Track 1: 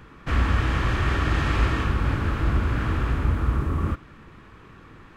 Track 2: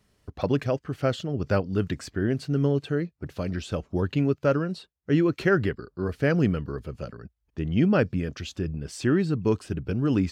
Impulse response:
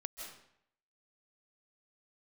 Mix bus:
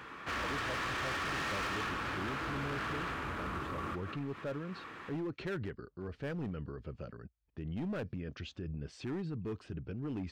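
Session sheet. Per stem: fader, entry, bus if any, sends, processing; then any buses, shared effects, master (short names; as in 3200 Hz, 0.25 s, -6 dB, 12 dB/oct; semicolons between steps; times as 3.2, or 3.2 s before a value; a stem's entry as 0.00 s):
+2.5 dB, 0.00 s, send -3.5 dB, HPF 860 Hz 6 dB/oct; high shelf 5100 Hz -6 dB
-7.0 dB, 0.00 s, no send, LPF 3700 Hz 12 dB/oct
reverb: on, RT60 0.70 s, pre-delay 0.12 s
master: hard clip -26 dBFS, distortion -10 dB; limiter -33.5 dBFS, peak gain reduction 7.5 dB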